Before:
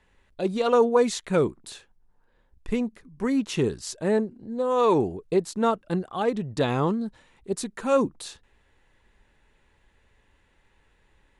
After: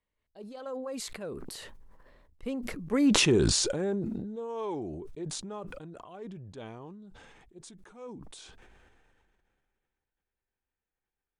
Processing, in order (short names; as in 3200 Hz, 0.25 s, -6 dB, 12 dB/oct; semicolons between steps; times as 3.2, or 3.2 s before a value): Doppler pass-by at 3.15, 33 m/s, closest 7.1 m; bell 500 Hz +2.5 dB 1.7 oct; sustainer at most 24 dB/s